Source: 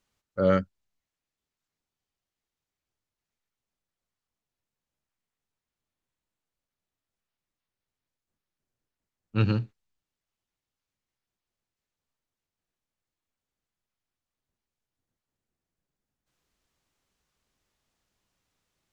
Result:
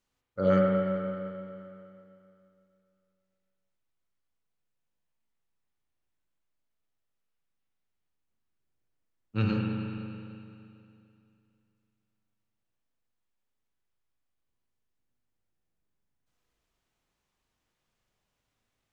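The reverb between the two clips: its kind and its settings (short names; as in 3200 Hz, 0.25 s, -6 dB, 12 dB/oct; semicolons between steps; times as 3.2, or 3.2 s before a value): spring tank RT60 2.7 s, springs 37/41 ms, chirp 65 ms, DRR -1.5 dB; gain -4.5 dB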